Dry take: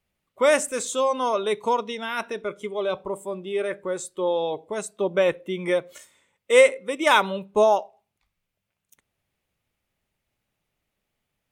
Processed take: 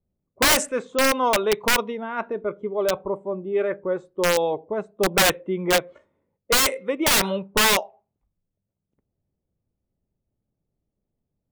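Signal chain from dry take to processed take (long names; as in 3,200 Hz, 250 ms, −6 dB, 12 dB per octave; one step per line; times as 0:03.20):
low-pass that shuts in the quiet parts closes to 400 Hz, open at −14.5 dBFS
wrap-around overflow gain 16 dB
level +3.5 dB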